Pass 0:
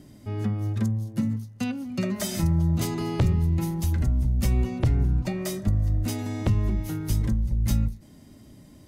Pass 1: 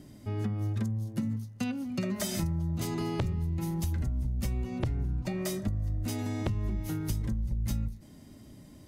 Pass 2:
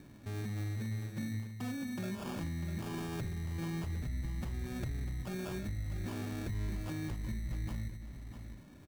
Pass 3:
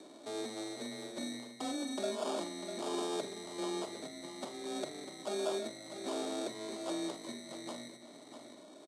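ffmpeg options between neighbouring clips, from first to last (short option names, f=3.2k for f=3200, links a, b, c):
-af "acompressor=threshold=-26dB:ratio=6,volume=-1.5dB"
-af "alimiter=level_in=4dB:limit=-24dB:level=0:latency=1:release=19,volume=-4dB,acrusher=samples=22:mix=1:aa=0.000001,aecho=1:1:648:0.335,volume=-4dB"
-filter_complex "[0:a]afreqshift=19,highpass=f=310:w=0.5412,highpass=f=310:w=1.3066,equalizer=f=630:t=q:w=4:g=9,equalizer=f=1.7k:t=q:w=4:g=-10,equalizer=f=2.6k:t=q:w=4:g=-9,equalizer=f=3.8k:t=q:w=4:g=7,equalizer=f=8.4k:t=q:w=4:g=6,lowpass=f=9.8k:w=0.5412,lowpass=f=9.8k:w=1.3066,asplit=2[a][b];[b]adelay=46,volume=-13dB[c];[a][c]amix=inputs=2:normalize=0,volume=5.5dB"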